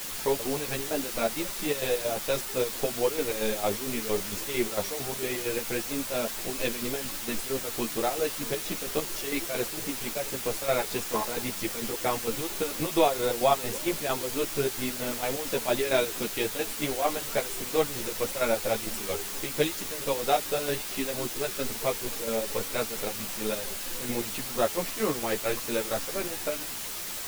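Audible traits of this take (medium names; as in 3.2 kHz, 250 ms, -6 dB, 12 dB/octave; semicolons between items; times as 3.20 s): chopped level 4.4 Hz, depth 65%, duty 55%; a quantiser's noise floor 6-bit, dither triangular; a shimmering, thickened sound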